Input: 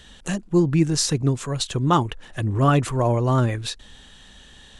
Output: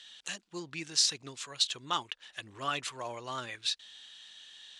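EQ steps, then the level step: band-pass filter 3.9 kHz, Q 1.2; 0.0 dB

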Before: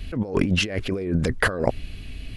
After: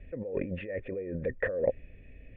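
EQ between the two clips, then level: cascade formant filter e; bass shelf 400 Hz +5.5 dB; 0.0 dB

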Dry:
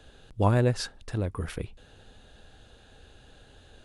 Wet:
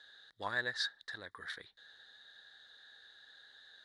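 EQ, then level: two resonant band-passes 2.6 kHz, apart 1.1 oct; +6.5 dB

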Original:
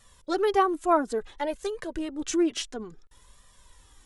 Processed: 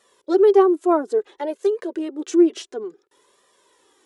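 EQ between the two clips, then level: dynamic bell 2.1 kHz, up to -4 dB, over -41 dBFS, Q 1.1; resonant high-pass 380 Hz, resonance Q 4.4; treble shelf 6.7 kHz -6 dB; 0.0 dB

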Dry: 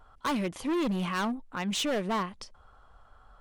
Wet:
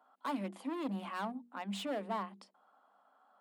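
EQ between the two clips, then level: rippled Chebyshev high-pass 190 Hz, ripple 9 dB; peaking EQ 6 kHz -10.5 dB 0.26 oct; hum notches 60/120/180/240/300/360/420/480 Hz; -3.5 dB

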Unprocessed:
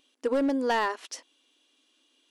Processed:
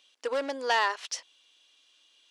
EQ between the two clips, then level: three-band isolator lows -22 dB, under 450 Hz, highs -13 dB, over 6.7 kHz; treble shelf 2.4 kHz +9 dB; 0.0 dB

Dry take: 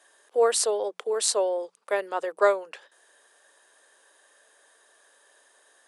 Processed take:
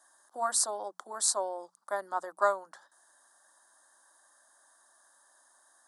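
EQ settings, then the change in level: peaking EQ 2.4 kHz -12 dB 0.67 oct; static phaser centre 1.1 kHz, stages 4; 0.0 dB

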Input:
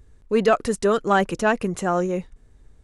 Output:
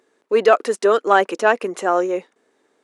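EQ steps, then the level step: high-pass 320 Hz 24 dB/octave; treble shelf 6.2 kHz -9 dB; +5.0 dB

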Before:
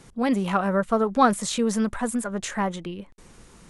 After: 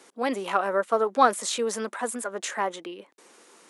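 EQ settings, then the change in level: high-pass 320 Hz 24 dB/octave; 0.0 dB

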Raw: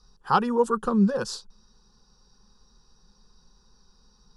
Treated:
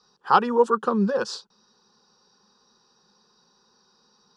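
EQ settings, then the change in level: band-pass 280–5100 Hz; +4.0 dB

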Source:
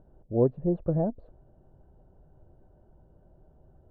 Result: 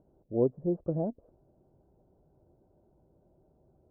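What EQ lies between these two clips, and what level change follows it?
high-pass 93 Hz 6 dB/octave; low-pass 1.3 kHz 24 dB/octave; peaking EQ 330 Hz +5 dB 1.5 oct; -6.5 dB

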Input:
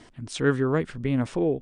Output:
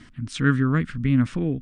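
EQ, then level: high-order bell 580 Hz -15 dB; treble shelf 3.1 kHz -9.5 dB; +6.5 dB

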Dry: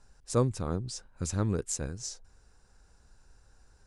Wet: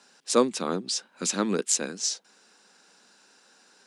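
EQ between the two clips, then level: steep high-pass 190 Hz 48 dB/octave; peaking EQ 3.3 kHz +10.5 dB 1.7 oct; +6.0 dB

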